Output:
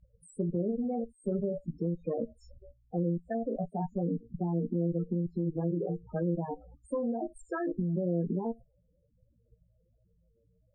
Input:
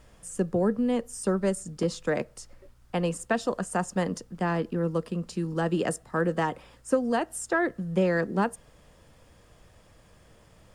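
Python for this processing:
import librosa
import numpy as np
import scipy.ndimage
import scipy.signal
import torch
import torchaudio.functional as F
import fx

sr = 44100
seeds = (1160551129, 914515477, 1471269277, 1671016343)

y = fx.room_flutter(x, sr, wall_m=3.0, rt60_s=0.23)
y = fx.level_steps(y, sr, step_db=17)
y = fx.cheby_harmonics(y, sr, harmonics=(3, 6, 7), levels_db=(-21, -21, -30), full_scale_db=-21.0)
y = fx.spec_topn(y, sr, count=8)
y = fx.env_lowpass_down(y, sr, base_hz=580.0, full_db=-34.5)
y = F.gain(torch.from_numpy(y), 7.5).numpy()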